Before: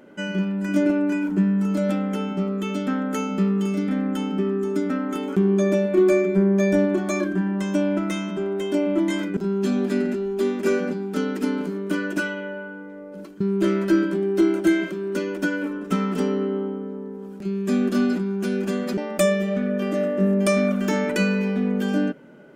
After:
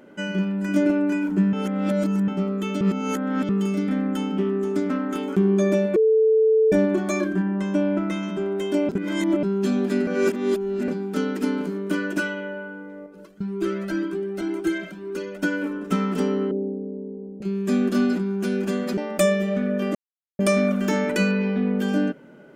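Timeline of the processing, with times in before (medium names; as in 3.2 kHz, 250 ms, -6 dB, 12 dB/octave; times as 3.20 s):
1.53–2.28 s: reverse
2.81–3.49 s: reverse
4.37–5.23 s: loudspeaker Doppler distortion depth 0.12 ms
5.96–6.72 s: bleep 440 Hz -14 dBFS
7.42–8.23 s: treble shelf 4.2 kHz -11 dB
8.89–9.43 s: reverse
10.07–10.88 s: reverse
13.06–15.43 s: Shepard-style flanger rising 2 Hz
16.51–17.42 s: steep low-pass 670 Hz
19.95–20.39 s: mute
21.31–21.79 s: low-pass 4.7 kHz 24 dB/octave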